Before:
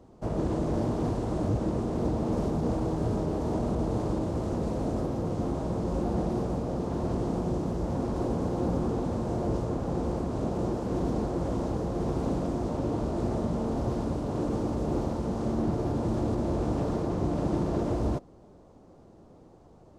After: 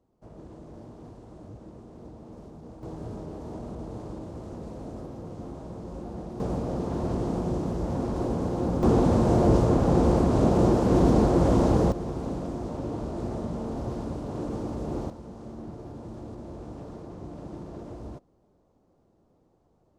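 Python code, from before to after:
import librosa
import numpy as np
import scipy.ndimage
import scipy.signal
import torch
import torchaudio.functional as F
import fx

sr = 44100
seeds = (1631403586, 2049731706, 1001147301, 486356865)

y = fx.gain(x, sr, db=fx.steps((0.0, -17.0), (2.83, -9.0), (6.4, 1.0), (8.83, 9.0), (11.92, -3.0), (15.1, -12.0)))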